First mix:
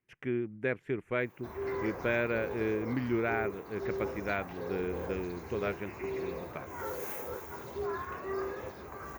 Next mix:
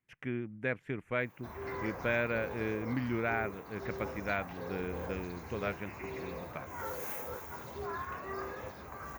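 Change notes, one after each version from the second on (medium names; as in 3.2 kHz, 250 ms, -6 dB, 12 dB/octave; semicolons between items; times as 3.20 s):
master: add peaking EQ 380 Hz -7.5 dB 0.53 oct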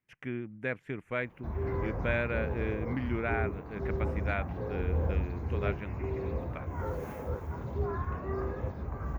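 background: add tilt EQ -4.5 dB/octave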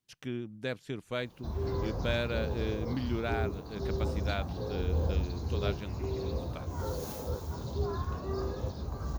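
master: add resonant high shelf 3 kHz +12.5 dB, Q 3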